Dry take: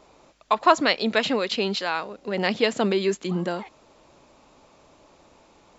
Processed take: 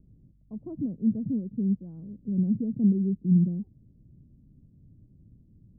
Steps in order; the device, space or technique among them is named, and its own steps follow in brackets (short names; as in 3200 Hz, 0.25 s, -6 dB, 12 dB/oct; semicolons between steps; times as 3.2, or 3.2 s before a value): the neighbour's flat through the wall (LPF 200 Hz 24 dB/oct; bell 110 Hz +7.5 dB 0.74 oct); gain +7.5 dB